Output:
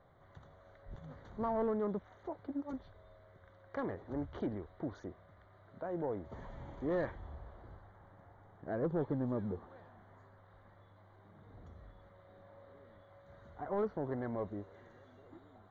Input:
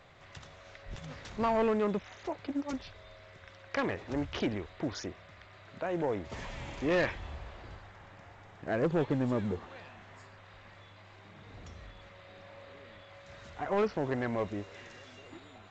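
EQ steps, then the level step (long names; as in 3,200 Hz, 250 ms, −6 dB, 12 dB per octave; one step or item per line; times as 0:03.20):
moving average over 17 samples
−5.0 dB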